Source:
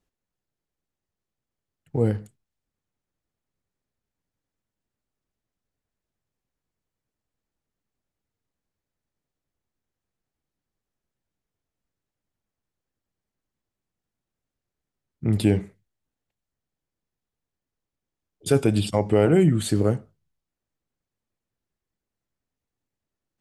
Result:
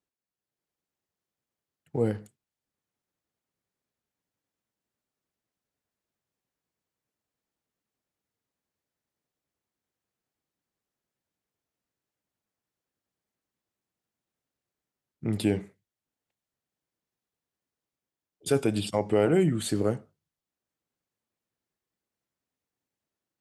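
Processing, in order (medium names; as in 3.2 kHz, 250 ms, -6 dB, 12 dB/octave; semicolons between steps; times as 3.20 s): level rider gain up to 8 dB; high-pass 200 Hz 6 dB/octave; trim -8 dB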